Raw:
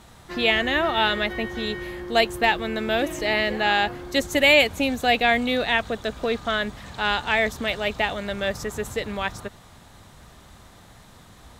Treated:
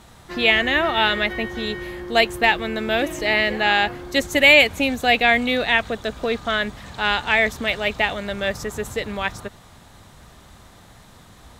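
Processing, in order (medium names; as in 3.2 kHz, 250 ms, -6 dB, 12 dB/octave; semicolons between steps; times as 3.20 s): dynamic bell 2.2 kHz, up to +4 dB, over -32 dBFS, Q 1.7; trim +1.5 dB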